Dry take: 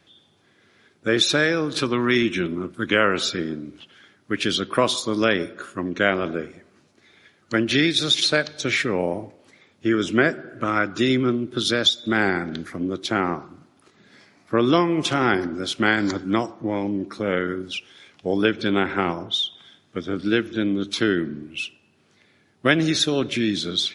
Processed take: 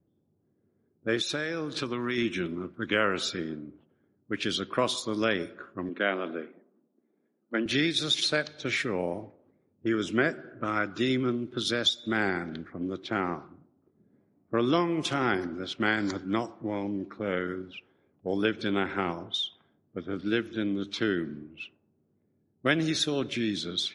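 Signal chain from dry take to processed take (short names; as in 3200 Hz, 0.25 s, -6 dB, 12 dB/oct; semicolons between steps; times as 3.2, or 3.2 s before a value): 5.89–7.66 Chebyshev band-pass 220–3800 Hz, order 3; low-pass opened by the level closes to 350 Hz, open at -19.5 dBFS; 1.15–2.18 compressor, threshold -20 dBFS, peak gain reduction 7 dB; gain -7 dB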